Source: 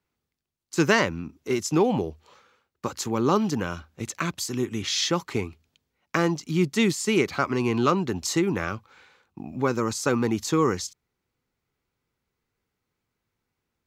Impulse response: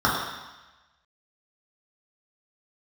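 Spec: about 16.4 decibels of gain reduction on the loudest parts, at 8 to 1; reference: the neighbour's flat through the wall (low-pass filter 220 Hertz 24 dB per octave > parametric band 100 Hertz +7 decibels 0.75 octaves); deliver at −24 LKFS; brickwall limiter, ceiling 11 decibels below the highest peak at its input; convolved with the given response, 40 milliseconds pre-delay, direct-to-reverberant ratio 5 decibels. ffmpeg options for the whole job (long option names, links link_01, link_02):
-filter_complex "[0:a]acompressor=threshold=-34dB:ratio=8,alimiter=level_in=3.5dB:limit=-24dB:level=0:latency=1,volume=-3.5dB,asplit=2[link_01][link_02];[1:a]atrim=start_sample=2205,adelay=40[link_03];[link_02][link_03]afir=irnorm=-1:irlink=0,volume=-24.5dB[link_04];[link_01][link_04]amix=inputs=2:normalize=0,lowpass=frequency=220:width=0.5412,lowpass=frequency=220:width=1.3066,equalizer=frequency=100:width_type=o:width=0.75:gain=7,volume=18.5dB"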